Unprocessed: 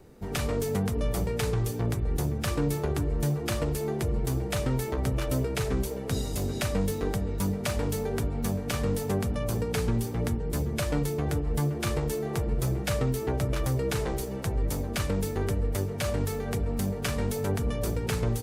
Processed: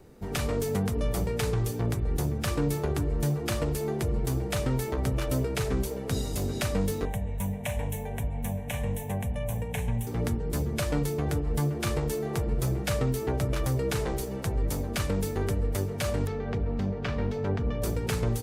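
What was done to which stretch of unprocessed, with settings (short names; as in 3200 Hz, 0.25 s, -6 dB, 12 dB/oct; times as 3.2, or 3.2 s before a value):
7.05–10.07 fixed phaser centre 1300 Hz, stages 6
16.27–17.82 air absorption 220 m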